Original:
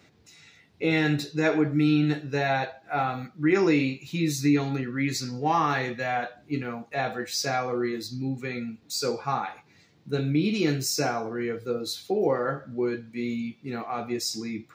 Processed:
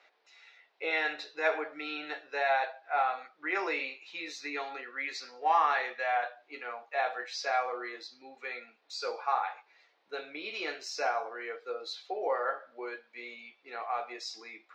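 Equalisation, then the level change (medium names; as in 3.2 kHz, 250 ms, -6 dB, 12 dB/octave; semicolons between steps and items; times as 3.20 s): high-pass 580 Hz 24 dB/octave; distance through air 190 m; treble shelf 10 kHz -5 dB; 0.0 dB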